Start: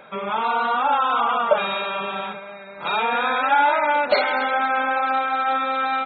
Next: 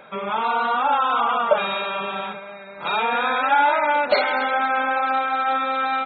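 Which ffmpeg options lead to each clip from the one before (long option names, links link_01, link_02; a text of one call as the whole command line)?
ffmpeg -i in.wav -af anull out.wav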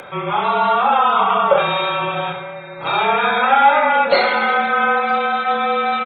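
ffmpeg -i in.wav -af "aecho=1:1:30|66|109.2|161|223.2:0.631|0.398|0.251|0.158|0.1,afreqshift=-35,acompressor=mode=upward:threshold=-34dB:ratio=2.5,volume=3dB" out.wav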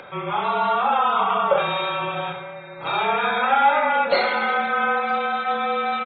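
ffmpeg -i in.wav -af "aresample=11025,aresample=44100,volume=-5dB" out.wav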